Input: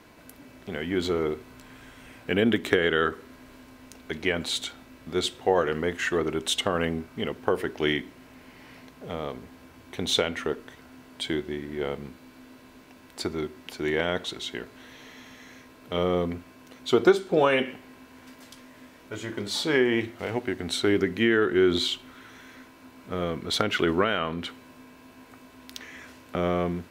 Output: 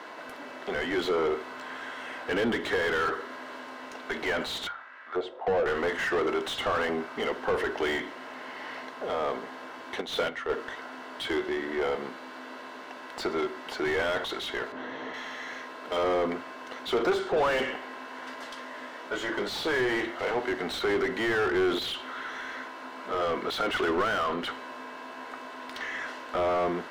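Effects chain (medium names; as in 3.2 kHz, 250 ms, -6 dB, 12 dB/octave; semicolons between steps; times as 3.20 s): band-stop 2.4 kHz, Q 6.2; 10.01–10.50 s: gate -25 dBFS, range -12 dB; frequency weighting A; saturation -17.5 dBFS, distortion -16 dB; 4.67–5.66 s: auto-wah 520–1900 Hz, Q 2.3, down, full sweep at -29.5 dBFS; 14.72–15.14 s: tilt EQ -4 dB/octave; overdrive pedal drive 25 dB, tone 1 kHz, clips at -17.5 dBFS; hum notches 50/100/150 Hz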